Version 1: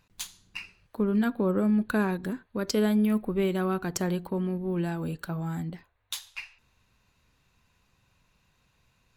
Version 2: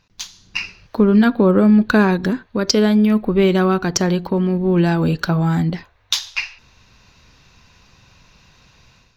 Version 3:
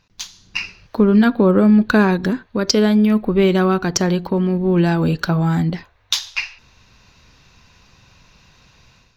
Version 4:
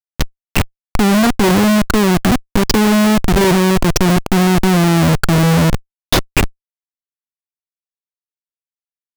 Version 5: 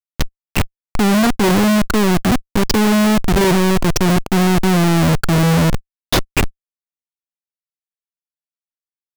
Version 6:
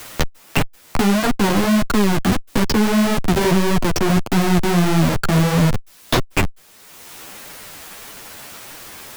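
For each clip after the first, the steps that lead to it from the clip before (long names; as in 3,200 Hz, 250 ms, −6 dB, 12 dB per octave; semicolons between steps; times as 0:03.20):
in parallel at −3 dB: downward compressor, threshold −33 dBFS, peak gain reduction 12 dB; on the sum: high shelf with overshoot 7,100 Hz −8.5 dB, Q 3; automatic gain control gain up to 12 dB
no processing that can be heard
in parallel at −1 dB: brickwall limiter −11 dBFS, peak gain reduction 8.5 dB; on the sum: comparator with hysteresis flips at −13.5 dBFS; level +3 dB
leveller curve on the samples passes 3; level −6 dB
converter with a step at zero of −38.5 dBFS; flanger 1.6 Hz, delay 6.1 ms, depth 8.1 ms, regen +1%; multiband upward and downward compressor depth 70%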